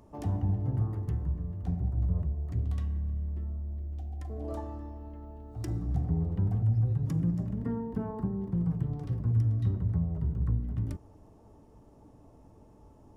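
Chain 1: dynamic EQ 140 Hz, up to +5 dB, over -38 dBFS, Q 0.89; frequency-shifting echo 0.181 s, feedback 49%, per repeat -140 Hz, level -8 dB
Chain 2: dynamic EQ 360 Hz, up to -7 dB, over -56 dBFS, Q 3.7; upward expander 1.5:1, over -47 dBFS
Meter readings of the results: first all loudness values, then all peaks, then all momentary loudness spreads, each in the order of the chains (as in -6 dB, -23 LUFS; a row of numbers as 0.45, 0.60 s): -28.0, -34.5 LUFS; -11.5, -18.0 dBFS; 14, 16 LU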